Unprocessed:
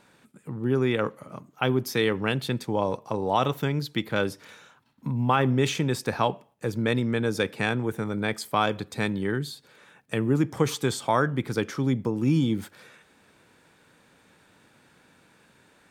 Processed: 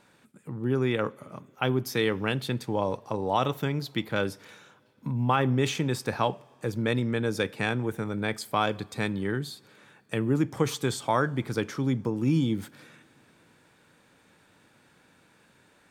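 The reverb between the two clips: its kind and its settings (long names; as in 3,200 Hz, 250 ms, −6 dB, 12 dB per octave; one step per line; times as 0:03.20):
coupled-rooms reverb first 0.23 s, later 3.6 s, from −21 dB, DRR 19 dB
level −2 dB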